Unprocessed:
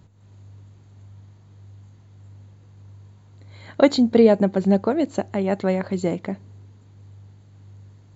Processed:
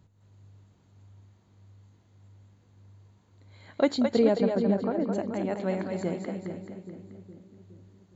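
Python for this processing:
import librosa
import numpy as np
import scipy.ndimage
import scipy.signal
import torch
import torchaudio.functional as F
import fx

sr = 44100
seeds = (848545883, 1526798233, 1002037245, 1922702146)

p1 = fx.lowpass(x, sr, hz=1900.0, slope=24, at=(4.37, 5.13))
p2 = p1 + fx.echo_split(p1, sr, split_hz=380.0, low_ms=415, high_ms=216, feedback_pct=52, wet_db=-5.0, dry=0)
y = F.gain(torch.from_numpy(p2), -8.5).numpy()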